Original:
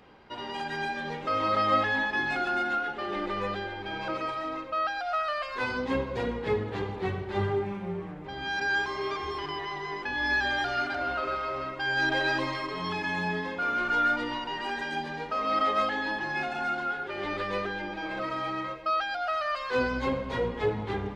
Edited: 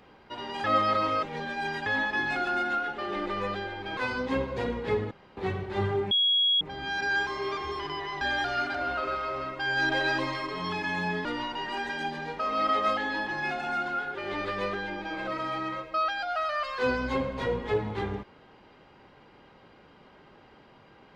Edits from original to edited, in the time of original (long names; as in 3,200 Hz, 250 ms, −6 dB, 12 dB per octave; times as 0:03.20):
0:00.64–0:01.86: reverse
0:03.97–0:05.56: remove
0:06.70–0:06.96: fill with room tone
0:07.70–0:08.20: beep over 3,320 Hz −20.5 dBFS
0:09.80–0:10.41: remove
0:13.45–0:14.17: remove